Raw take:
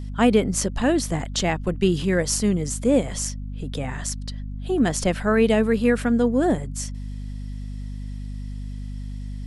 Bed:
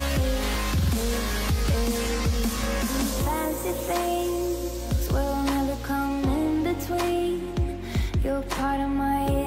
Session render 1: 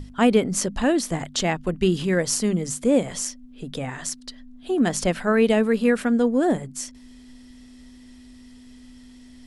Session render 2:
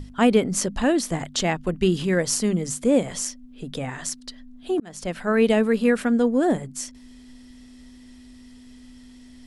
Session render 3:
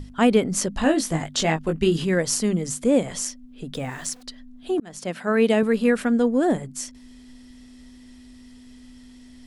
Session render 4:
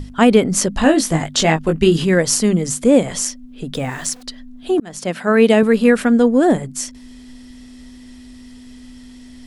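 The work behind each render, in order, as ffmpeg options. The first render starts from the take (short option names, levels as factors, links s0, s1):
-af "bandreject=f=50:t=h:w=6,bandreject=f=100:t=h:w=6,bandreject=f=150:t=h:w=6,bandreject=f=200:t=h:w=6"
-filter_complex "[0:a]asplit=2[s0][s1];[s0]atrim=end=4.8,asetpts=PTS-STARTPTS,afade=t=out:st=4.796:d=0.004:c=hsin[s2];[s1]atrim=start=4.8,asetpts=PTS-STARTPTS,afade=t=in:d=0.62[s3];[s2][s3]concat=n=2:v=0:a=1"
-filter_complex "[0:a]asettb=1/sr,asplit=3[s0][s1][s2];[s0]atrim=end=0.774[s3];[s1]atrim=start=0.77:end=2.04,asetpts=PTS-STARTPTS,afade=t=in:d=0.004:c=qsin,afade=t=out:st=1.266:d=0.004:c=qsin,asplit=2[s4][s5];[s5]adelay=19,volume=0.562[s6];[s4][s6]amix=inputs=2:normalize=0,atrim=end_sample=56007[s7];[s2]atrim=start=2.036[s8];[s3][s7]acrossfade=d=0.004:c1=hsin:c2=qsin[s9];[s9][s8]acrossfade=d=0.004:c1=qsin:c2=hsin,asettb=1/sr,asplit=3[s10][s11][s12];[s10]atrim=end=3.744[s13];[s11]atrim=start=3.74:end=4.23,asetpts=PTS-STARTPTS,afade=t=in:d=0.004:c=qsin,afade=t=out:st=0.486:d=0.004:c=qsin,aeval=exprs='val(0)*gte(abs(val(0)),0.00501)':c=same[s14];[s12]atrim=start=4.226[s15];[s13][s14]acrossfade=d=0.004:c1=hsin:c2=qsin[s16];[s16][s15]acrossfade=d=0.004:c1=qsin:c2=hsin,asettb=1/sr,asplit=3[s17][s18][s19];[s17]atrim=end=4.994[s20];[s18]atrim=start=4.99:end=5.63,asetpts=PTS-STARTPTS,afade=t=in:d=0.004:c=qsin,afade=t=out:st=0.636:d=0.004:c=qsin,highpass=130[s21];[s19]atrim=start=5.626[s22];[s20][s21]acrossfade=d=0.004:c1=hsin:c2=qsin[s23];[s23][s22]acrossfade=d=0.004:c1=qsin:c2=hsin"
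-af "volume=2.24,alimiter=limit=0.891:level=0:latency=1"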